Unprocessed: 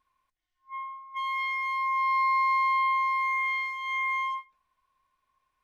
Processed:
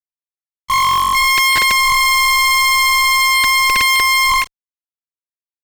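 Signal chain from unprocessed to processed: formants replaced by sine waves; high-pass 960 Hz 6 dB/octave; in parallel at +1 dB: compression, threshold -38 dBFS, peak gain reduction 14 dB; on the sum: fuzz box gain 54 dB, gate -51 dBFS; trim +1 dB

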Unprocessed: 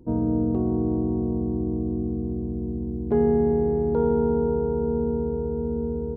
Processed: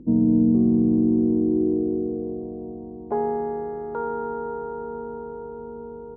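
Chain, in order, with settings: upward compressor, threshold -45 dBFS; band-pass sweep 220 Hz -> 1.3 kHz, 0.88–3.76 s; hum 50 Hz, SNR 32 dB; trim +9 dB

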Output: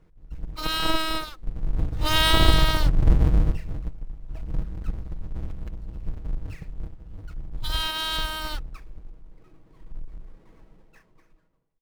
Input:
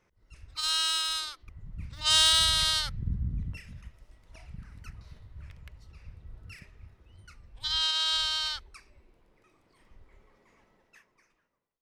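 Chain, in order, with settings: square wave that keeps the level; tilt EQ -3 dB/octave; comb 6.3 ms, depth 39%; trim -1 dB

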